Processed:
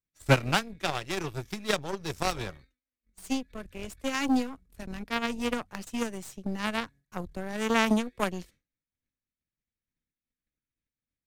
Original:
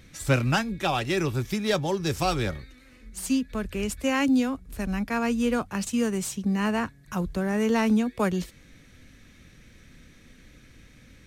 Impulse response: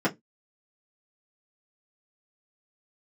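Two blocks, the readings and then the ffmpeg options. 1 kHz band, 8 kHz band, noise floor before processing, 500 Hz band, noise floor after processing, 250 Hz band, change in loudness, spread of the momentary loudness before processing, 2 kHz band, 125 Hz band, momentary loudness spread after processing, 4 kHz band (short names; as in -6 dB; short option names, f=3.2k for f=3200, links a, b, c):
-2.5 dB, -5.0 dB, -54 dBFS, -4.5 dB, under -85 dBFS, -6.5 dB, -4.0 dB, 9 LU, -1.5 dB, -5.5 dB, 15 LU, -0.5 dB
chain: -af "aeval=exprs='0.251*(cos(1*acos(clip(val(0)/0.251,-1,1)))-cos(1*PI/2))+0.0891*(cos(3*acos(clip(val(0)/0.251,-1,1)))-cos(3*PI/2))+0.00891*(cos(5*acos(clip(val(0)/0.251,-1,1)))-cos(5*PI/2))+0.00447*(cos(8*acos(clip(val(0)/0.251,-1,1)))-cos(8*PI/2))':c=same,agate=range=-33dB:threshold=-52dB:ratio=3:detection=peak,volume=5dB"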